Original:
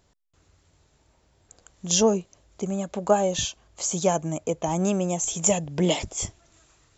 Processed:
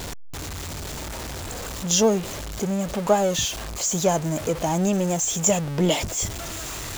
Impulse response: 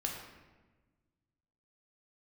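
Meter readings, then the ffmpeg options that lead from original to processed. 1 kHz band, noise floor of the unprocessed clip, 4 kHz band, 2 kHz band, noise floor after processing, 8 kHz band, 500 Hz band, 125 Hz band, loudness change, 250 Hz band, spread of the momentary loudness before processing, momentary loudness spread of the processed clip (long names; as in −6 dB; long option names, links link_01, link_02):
+2.0 dB, −65 dBFS, +3.5 dB, +5.5 dB, −33 dBFS, can't be measured, +1.5 dB, +3.5 dB, +1.0 dB, +2.5 dB, 10 LU, 12 LU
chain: -af "aeval=exprs='val(0)+0.5*0.0447*sgn(val(0))':channel_layout=same"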